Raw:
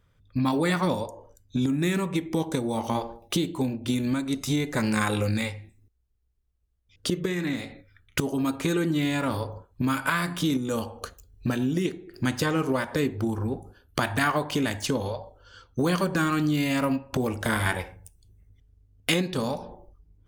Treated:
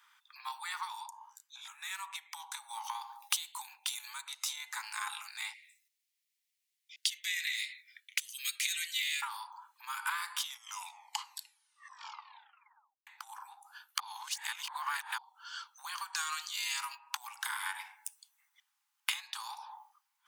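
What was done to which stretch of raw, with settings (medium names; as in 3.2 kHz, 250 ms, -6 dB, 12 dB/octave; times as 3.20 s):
1.10–1.91 s: detune thickener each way 58 cents
3.01–4.21 s: treble shelf 5.5 kHz +9 dB
5.53–9.22 s: Chebyshev band-stop 110–2000 Hz, order 4
10.37 s: tape stop 2.70 s
14.00–15.18 s: reverse
16.13–16.95 s: peaking EQ 6 kHz +13 dB 2.1 oct
whole clip: compression 12:1, threshold -37 dBFS; steep high-pass 840 Hz 96 dB/octave; dynamic bell 1.7 kHz, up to -4 dB, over -58 dBFS, Q 0.82; trim +9.5 dB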